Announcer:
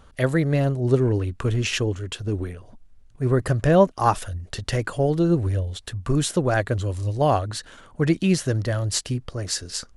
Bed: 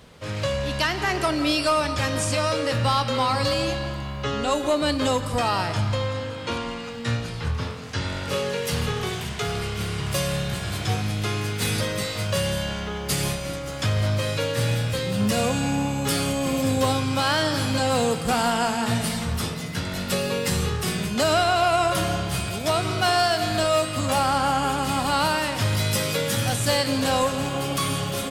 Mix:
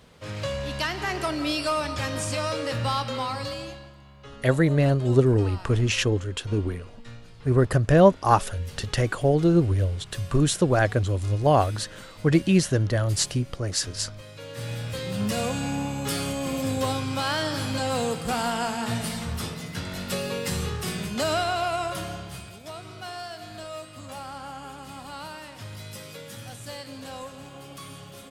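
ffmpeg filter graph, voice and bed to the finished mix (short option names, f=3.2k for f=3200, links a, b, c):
-filter_complex "[0:a]adelay=4250,volume=0.5dB[a];[1:a]volume=9.5dB,afade=t=out:st=2.95:d=0.97:silence=0.199526,afade=t=in:st=14.34:d=0.8:silence=0.199526,afade=t=out:st=21.29:d=1.33:silence=0.251189[b];[a][b]amix=inputs=2:normalize=0"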